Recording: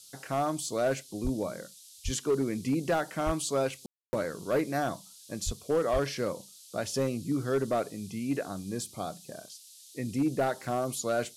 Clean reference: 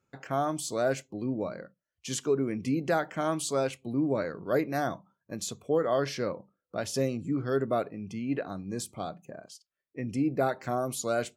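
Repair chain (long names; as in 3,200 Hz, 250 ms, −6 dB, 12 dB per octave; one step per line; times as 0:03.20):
clipped peaks rebuilt −21 dBFS
high-pass at the plosives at 0:01.23/0:02.04/0:03.25/0:05.45/0:05.92
ambience match 0:03.86–0:04.13
noise reduction from a noise print 18 dB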